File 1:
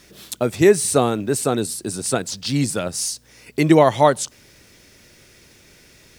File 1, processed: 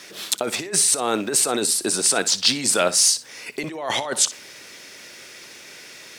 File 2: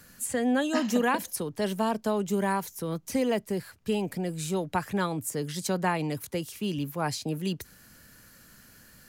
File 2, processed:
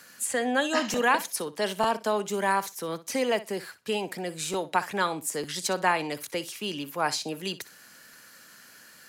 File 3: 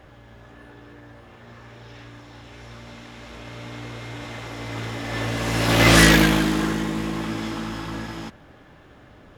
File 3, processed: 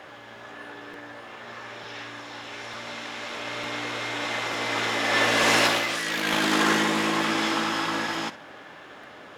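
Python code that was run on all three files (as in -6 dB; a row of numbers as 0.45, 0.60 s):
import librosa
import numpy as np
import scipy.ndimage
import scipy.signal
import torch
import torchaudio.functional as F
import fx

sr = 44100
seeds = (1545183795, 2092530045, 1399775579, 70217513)

p1 = fx.dynamic_eq(x, sr, hz=100.0, q=1.1, threshold_db=-37.0, ratio=4.0, max_db=-4)
p2 = fx.over_compress(p1, sr, threshold_db=-24.0, ratio=-1.0)
p3 = fx.weighting(p2, sr, curve='A')
p4 = p3 + fx.room_flutter(p3, sr, wall_m=10.5, rt60_s=0.22, dry=0)
p5 = fx.buffer_crackle(p4, sr, first_s=0.93, period_s=0.9, block=256, kind='repeat')
y = p5 * 10.0 ** (4.5 / 20.0)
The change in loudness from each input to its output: 0.0, +1.0, -4.0 LU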